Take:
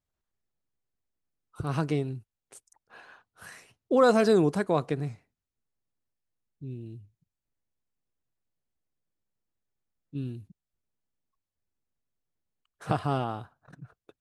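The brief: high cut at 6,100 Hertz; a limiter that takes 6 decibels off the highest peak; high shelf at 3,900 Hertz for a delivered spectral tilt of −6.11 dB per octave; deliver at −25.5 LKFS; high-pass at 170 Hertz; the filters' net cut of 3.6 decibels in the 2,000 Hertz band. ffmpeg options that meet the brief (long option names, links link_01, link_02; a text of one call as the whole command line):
ffmpeg -i in.wav -af "highpass=170,lowpass=6100,equalizer=frequency=2000:width_type=o:gain=-6.5,highshelf=frequency=3900:gain=4.5,volume=5.5dB,alimiter=limit=-12dB:level=0:latency=1" out.wav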